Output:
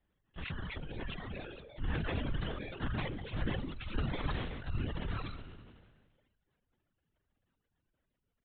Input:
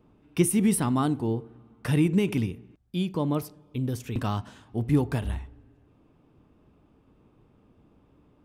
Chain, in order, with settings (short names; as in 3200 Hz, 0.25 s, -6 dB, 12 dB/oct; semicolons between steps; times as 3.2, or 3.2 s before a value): FFT order left unsorted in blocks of 32 samples; Doppler pass-by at 3.39, 17 m/s, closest 3 m; tilt shelf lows -4 dB, about 1400 Hz; comb 7.3 ms, depth 33%; dynamic EQ 130 Hz, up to +5 dB, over -53 dBFS, Q 1.8; transient shaper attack -5 dB, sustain +12 dB; negative-ratio compressor -41 dBFS, ratio -1; echo 73 ms -19 dB; echoes that change speed 0.607 s, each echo +6 st, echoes 3, each echo -6 dB; LPC vocoder at 8 kHz whisper; reverb removal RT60 1.6 s; sustainer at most 36 dB/s; gain +6.5 dB